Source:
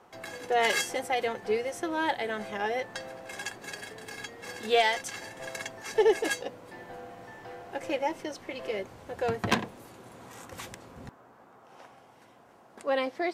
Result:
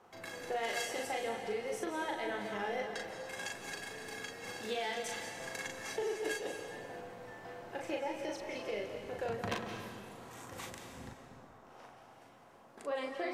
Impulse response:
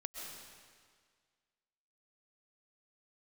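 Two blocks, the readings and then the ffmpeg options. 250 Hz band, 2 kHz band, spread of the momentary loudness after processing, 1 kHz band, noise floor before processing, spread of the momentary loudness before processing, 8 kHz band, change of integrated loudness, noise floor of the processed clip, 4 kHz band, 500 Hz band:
−7.0 dB, −7.5 dB, 17 LU, −8.5 dB, −57 dBFS, 20 LU, −5.5 dB, −9.0 dB, −58 dBFS, −8.0 dB, −8.5 dB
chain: -filter_complex "[0:a]acompressor=threshold=-30dB:ratio=6,asplit=2[link_01][link_02];[1:a]atrim=start_sample=2205,adelay=39[link_03];[link_02][link_03]afir=irnorm=-1:irlink=0,volume=1dB[link_04];[link_01][link_04]amix=inputs=2:normalize=0,volume=-5.5dB"

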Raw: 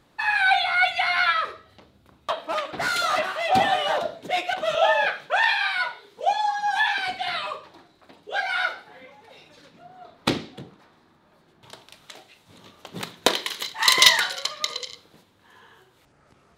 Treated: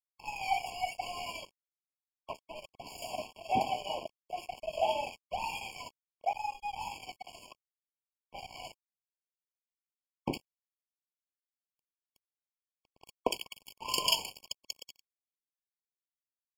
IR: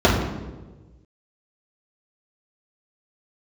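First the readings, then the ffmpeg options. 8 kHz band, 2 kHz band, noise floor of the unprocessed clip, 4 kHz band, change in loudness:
−13.0 dB, −22.5 dB, −60 dBFS, −14.5 dB, −14.0 dB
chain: -filter_complex "[0:a]acrossover=split=1900[link_01][link_02];[link_02]adelay=60[link_03];[link_01][link_03]amix=inputs=2:normalize=0,aeval=exprs='sgn(val(0))*max(abs(val(0))-0.0447,0)':channel_layout=same,afftfilt=real='re*eq(mod(floor(b*sr/1024/1100),2),0)':imag='im*eq(mod(floor(b*sr/1024/1100),2),0)':win_size=1024:overlap=0.75,volume=-6.5dB"

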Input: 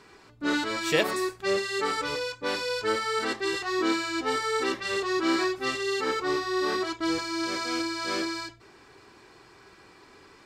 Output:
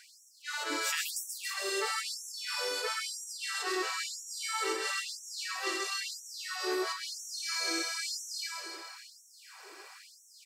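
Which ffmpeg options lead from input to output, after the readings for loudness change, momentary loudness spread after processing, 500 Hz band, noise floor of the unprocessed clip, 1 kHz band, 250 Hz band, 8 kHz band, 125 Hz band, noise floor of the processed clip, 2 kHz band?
−6.0 dB, 18 LU, −11.5 dB, −54 dBFS, −8.5 dB, −15.0 dB, +3.5 dB, below −40 dB, −59 dBFS, −5.5 dB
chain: -af "equalizer=frequency=3600:width_type=o:width=0.35:gain=-4.5,acompressor=threshold=-38dB:ratio=2,aecho=1:1:130|273|430.3|603.3|793.7:0.631|0.398|0.251|0.158|0.1,crystalizer=i=2:c=0,afftfilt=real='re*gte(b*sr/1024,290*pow(5600/290,0.5+0.5*sin(2*PI*1*pts/sr)))':imag='im*gte(b*sr/1024,290*pow(5600/290,0.5+0.5*sin(2*PI*1*pts/sr)))':win_size=1024:overlap=0.75"

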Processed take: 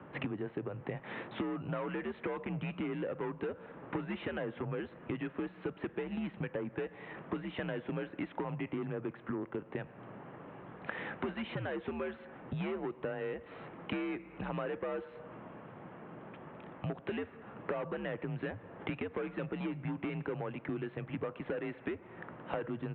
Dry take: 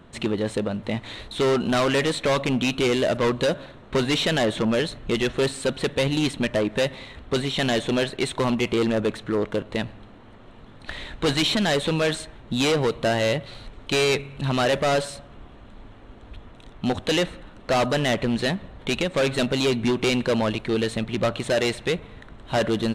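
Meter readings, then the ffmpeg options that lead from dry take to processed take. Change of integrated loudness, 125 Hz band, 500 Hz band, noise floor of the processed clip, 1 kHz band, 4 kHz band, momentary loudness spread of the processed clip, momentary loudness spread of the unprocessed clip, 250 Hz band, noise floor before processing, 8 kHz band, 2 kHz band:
−16.0 dB, −13.0 dB, −16.0 dB, −54 dBFS, −15.0 dB, −26.5 dB, 11 LU, 9 LU, −13.5 dB, −46 dBFS, below −40 dB, −15.5 dB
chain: -filter_complex "[0:a]acrossover=split=190 2400:gain=0.178 1 0.0794[link_01][link_02][link_03];[link_01][link_02][link_03]amix=inputs=3:normalize=0,acompressor=threshold=-36dB:ratio=12,highpass=frequency=200:width_type=q:width=0.5412,highpass=frequency=200:width_type=q:width=1.307,lowpass=frequency=3200:width_type=q:width=0.5176,lowpass=frequency=3200:width_type=q:width=0.7071,lowpass=frequency=3200:width_type=q:width=1.932,afreqshift=-88,volume=2dB"

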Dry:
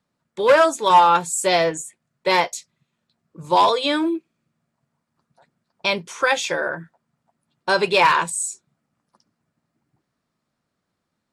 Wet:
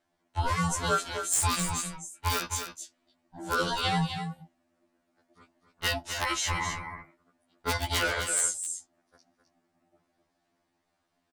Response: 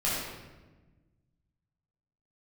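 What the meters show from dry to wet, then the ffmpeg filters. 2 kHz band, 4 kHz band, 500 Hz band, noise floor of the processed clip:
−9.0 dB, −7.0 dB, −17.0 dB, −77 dBFS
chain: -filter_complex "[0:a]highshelf=frequency=11000:gain=-2.5,acrossover=split=170|5100[link_01][link_02][link_03];[link_02]acompressor=threshold=-28dB:ratio=6[link_04];[link_01][link_04][link_03]amix=inputs=3:normalize=0,aeval=exprs='val(0)*sin(2*PI*480*n/s)':channel_layout=same,aeval=exprs='(mod(7.08*val(0)+1,2)-1)/7.08':channel_layout=same,asplit=2[link_05][link_06];[link_06]aecho=0:1:260:0.398[link_07];[link_05][link_07]amix=inputs=2:normalize=0,afftfilt=real='re*2*eq(mod(b,4),0)':imag='im*2*eq(mod(b,4),0)':win_size=2048:overlap=0.75,volume=5dB"

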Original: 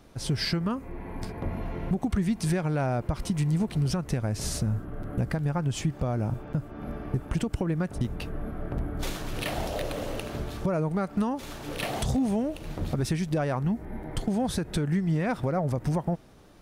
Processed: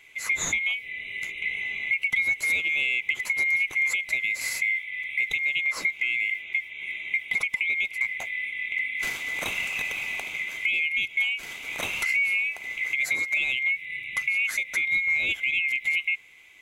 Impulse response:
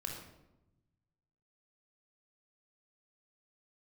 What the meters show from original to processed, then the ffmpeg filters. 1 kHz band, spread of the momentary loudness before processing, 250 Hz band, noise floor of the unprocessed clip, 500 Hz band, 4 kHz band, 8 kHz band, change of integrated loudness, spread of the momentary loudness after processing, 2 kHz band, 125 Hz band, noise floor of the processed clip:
−10.0 dB, 9 LU, −24.5 dB, −46 dBFS, −16.5 dB, +5.5 dB, +4.0 dB, +4.5 dB, 7 LU, +19.5 dB, below −25 dB, −44 dBFS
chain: -af "afftfilt=real='real(if(lt(b,920),b+92*(1-2*mod(floor(b/92),2)),b),0)':imag='imag(if(lt(b,920),b+92*(1-2*mod(floor(b/92),2)),b),0)':win_size=2048:overlap=0.75,volume=1dB"

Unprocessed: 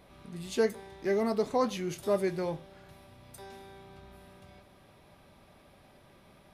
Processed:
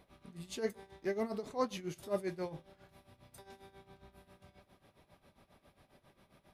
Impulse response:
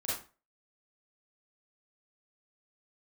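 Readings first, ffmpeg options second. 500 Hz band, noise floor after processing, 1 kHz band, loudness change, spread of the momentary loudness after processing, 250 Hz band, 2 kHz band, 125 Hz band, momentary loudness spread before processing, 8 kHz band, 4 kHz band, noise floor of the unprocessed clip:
−8.5 dB, −74 dBFS, −7.5 dB, −8.0 dB, 21 LU, −8.0 dB, −7.5 dB, −7.5 dB, 20 LU, −6.5 dB, −6.5 dB, −59 dBFS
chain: -af "tremolo=f=7.4:d=0.8,volume=-4dB"

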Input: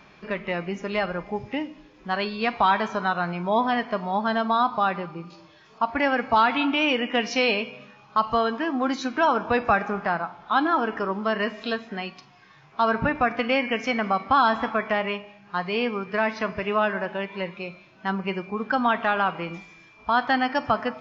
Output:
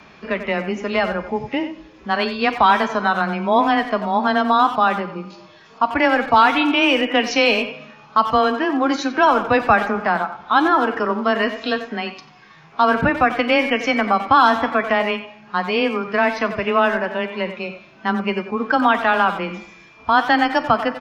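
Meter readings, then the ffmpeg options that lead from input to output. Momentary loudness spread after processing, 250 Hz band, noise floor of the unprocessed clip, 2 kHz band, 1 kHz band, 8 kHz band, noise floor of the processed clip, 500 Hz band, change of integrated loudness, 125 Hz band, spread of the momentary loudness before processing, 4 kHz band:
11 LU, +6.0 dB, −53 dBFS, +6.5 dB, +6.5 dB, can't be measured, −47 dBFS, +6.0 dB, +6.5 dB, +3.0 dB, 11 LU, +6.5 dB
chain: -filter_complex "[0:a]asplit=2[link_01][link_02];[link_02]adelay=90,highpass=300,lowpass=3400,asoftclip=type=hard:threshold=-18dB,volume=-10dB[link_03];[link_01][link_03]amix=inputs=2:normalize=0,afreqshift=14,volume=6dB"

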